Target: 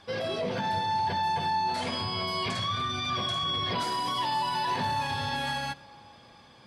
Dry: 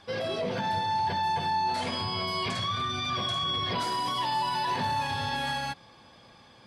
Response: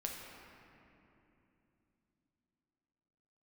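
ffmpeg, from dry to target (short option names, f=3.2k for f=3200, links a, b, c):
-filter_complex "[0:a]asplit=2[a][b];[1:a]atrim=start_sample=2205,adelay=85[c];[b][c]afir=irnorm=-1:irlink=0,volume=-20.5dB[d];[a][d]amix=inputs=2:normalize=0"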